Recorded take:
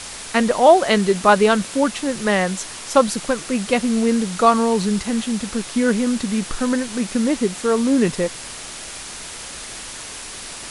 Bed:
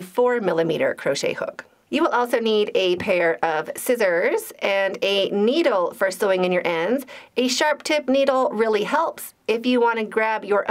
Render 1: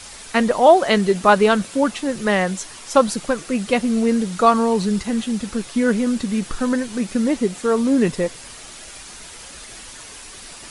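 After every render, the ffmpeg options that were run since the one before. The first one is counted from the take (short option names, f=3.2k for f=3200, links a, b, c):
-af "afftdn=nr=7:nf=-34"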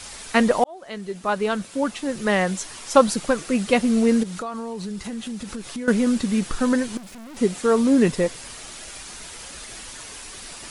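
-filter_complex "[0:a]asettb=1/sr,asplit=3[a][b][c];[a]atrim=end=4.234[d];[b]atrim=start=4.23:end=5.88,asetpts=PTS-STARTPTS,afade=t=in:d=0.004:c=qsin,afade=t=out:st=1.646:d=0.004:c=qsin,acompressor=threshold=-29dB:ratio=5:attack=3.2:release=140:knee=1:detection=peak[e];[c]atrim=start=5.876[f];[d][e]acrossfade=d=0.004:c1=hsin:c2=qsin[g];[g][f]acrossfade=d=0.004:c1=qsin:c2=hsin,asettb=1/sr,asplit=3[h][i][j];[h]atrim=end=6.974[k];[i]atrim=start=6.97:end=7.37,asetpts=PTS-STARTPTS,afade=t=in:d=0.004:c=qsin,afade=t=out:st=0.396:d=0.004:c=qsin,aeval=exprs='(tanh(89.1*val(0)+0.45)-tanh(0.45))/89.1':c=same[l];[j]atrim=start=7.366[m];[k][l]acrossfade=d=0.004:c1=hsin:c2=qsin[n];[n][m]acrossfade=d=0.004:c1=qsin:c2=hsin,asplit=2[o][p];[o]atrim=end=0.64,asetpts=PTS-STARTPTS,afade=t=out:st=0.636:d=0.004:c=hsin[q];[p]atrim=start=0.64,asetpts=PTS-STARTPTS,afade=t=in:d=2.15[r];[q][r]concat=n=2:v=0:a=1"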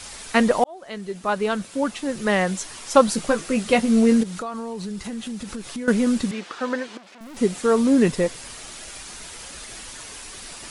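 -filter_complex "[0:a]asettb=1/sr,asplit=3[a][b][c];[a]atrim=end=3.124[d];[b]atrim=start=3.12:end=4.21,asetpts=PTS-STARTPTS,afade=t=in:d=0.004:c=qsin,afade=t=out:st=1.086:d=0.004:c=qsin,asplit=2[e][f];[f]adelay=18,volume=-8dB[g];[e][g]amix=inputs=2:normalize=0,atrim=end_sample=48069[h];[c]atrim=start=4.206[i];[d][h]acrossfade=d=0.004:c1=hsin:c2=qsin[j];[j][i]acrossfade=d=0.004:c1=qsin:c2=hsin,asettb=1/sr,asplit=3[k][l][m];[k]atrim=end=6.314[n];[l]atrim=start=6.31:end=7.21,asetpts=PTS-STARTPTS,afade=t=in:d=0.004:c=qsin,afade=t=out:st=0.896:d=0.004:c=qsin,highpass=420,lowpass=4.2k[o];[m]atrim=start=7.206[p];[n][o]acrossfade=d=0.004:c1=hsin:c2=qsin[q];[q][p]acrossfade=d=0.004:c1=qsin:c2=hsin"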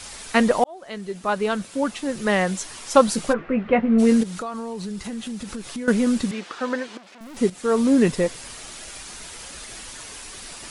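-filter_complex "[0:a]asplit=3[a][b][c];[a]afade=t=out:st=3.32:d=0.02[d];[b]lowpass=f=2.2k:w=0.5412,lowpass=f=2.2k:w=1.3066,afade=t=in:st=3.32:d=0.02,afade=t=out:st=3.98:d=0.02[e];[c]afade=t=in:st=3.98:d=0.02[f];[d][e][f]amix=inputs=3:normalize=0,asplit=2[g][h];[g]atrim=end=7.5,asetpts=PTS-STARTPTS,afade=t=out:st=7.496:d=0.004:c=hsin:silence=0.237137[i];[h]atrim=start=7.5,asetpts=PTS-STARTPTS,afade=t=in:d=0.41:c=qsin:silence=0.237137[j];[i][j]concat=n=2:v=0:a=1"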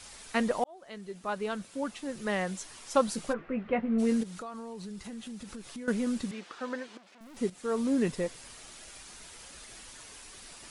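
-af "volume=-10.5dB"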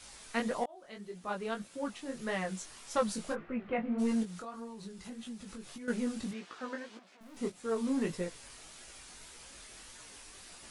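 -filter_complex "[0:a]acrossover=split=960[a][b];[a]asoftclip=type=tanh:threshold=-23.5dB[c];[c][b]amix=inputs=2:normalize=0,flanger=delay=16.5:depth=6.2:speed=1.7"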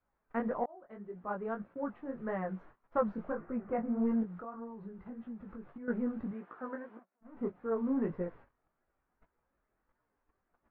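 -af "lowpass=f=1.5k:w=0.5412,lowpass=f=1.5k:w=1.3066,agate=range=-23dB:threshold=-53dB:ratio=16:detection=peak"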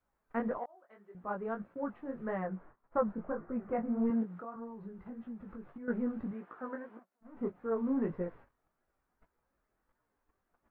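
-filter_complex "[0:a]asettb=1/sr,asplit=3[a][b][c];[a]atrim=end=0.584[d];[b]atrim=start=0.58:end=1.15,asetpts=PTS-STARTPTS,afade=t=in:d=0.004:c=qsin,afade=t=out:st=0.566:d=0.004:c=qsin,highpass=f=1.2k:p=1[e];[c]atrim=start=1.146[f];[d][e]acrossfade=d=0.004:c1=hsin:c2=qsin[g];[g][f]acrossfade=d=0.004:c1=qsin:c2=hsin,asettb=1/sr,asplit=3[h][i][j];[h]atrim=end=2.474[k];[i]atrim=start=2.47:end=3.56,asetpts=PTS-STARTPTS,afade=t=in:d=0.004:c=qsin,afade=t=out:st=1.086:d=0.004:c=qsin,lowpass=1.8k[l];[j]atrim=start=3.556[m];[k][l]acrossfade=d=0.004:c1=hsin:c2=qsin[n];[n][m]acrossfade=d=0.004:c1=qsin:c2=hsin,asettb=1/sr,asplit=3[o][p][q];[o]atrim=end=4.104[r];[p]atrim=start=4.1:end=4.56,asetpts=PTS-STARTPTS,afade=t=in:d=0.004:c=qsin,afade=t=out:st=0.456:d=0.004:c=qsin,highpass=130[s];[q]atrim=start=4.556[t];[r][s]acrossfade=d=0.004:c1=hsin:c2=qsin[u];[u][t]acrossfade=d=0.004:c1=qsin:c2=hsin"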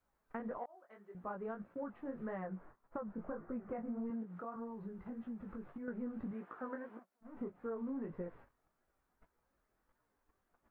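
-af "alimiter=level_in=4.5dB:limit=-24dB:level=0:latency=1:release=283,volume=-4.5dB,acompressor=threshold=-39dB:ratio=4"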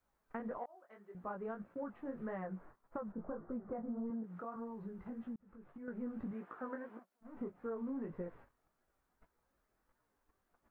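-filter_complex "[0:a]asettb=1/sr,asplit=3[a][b][c];[a]atrim=end=3.124[d];[b]atrim=start=3.12:end=4.24,asetpts=PTS-STARTPTS,afade=t=in:d=0.004:c=qsin,afade=t=out:st=1.116:d=0.004:c=qsin,lowpass=1.3k[e];[c]atrim=start=4.236[f];[d][e]acrossfade=d=0.004:c1=hsin:c2=qsin[g];[g][f]acrossfade=d=0.004:c1=qsin:c2=hsin,asplit=2[h][i];[h]atrim=end=5.36,asetpts=PTS-STARTPTS,afade=t=out:st=5.356:d=0.004:c=hsin[j];[i]atrim=start=5.36,asetpts=PTS-STARTPTS,afade=t=in:d=0.69[k];[j][k]concat=n=2:v=0:a=1"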